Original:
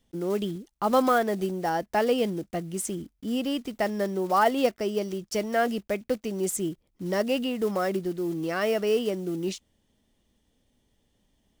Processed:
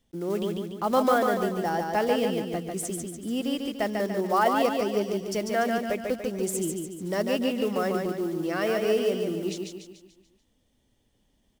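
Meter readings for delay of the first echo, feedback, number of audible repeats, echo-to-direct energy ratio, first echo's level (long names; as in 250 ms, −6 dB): 145 ms, 48%, 5, −3.0 dB, −4.0 dB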